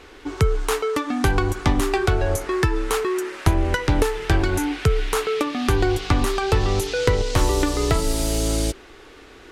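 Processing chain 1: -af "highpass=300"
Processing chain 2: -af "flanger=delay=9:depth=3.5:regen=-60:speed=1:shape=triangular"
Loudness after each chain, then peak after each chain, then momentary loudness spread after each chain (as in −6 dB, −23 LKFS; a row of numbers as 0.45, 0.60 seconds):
−25.0, −26.5 LKFS; −6.5, −9.0 dBFS; 4, 3 LU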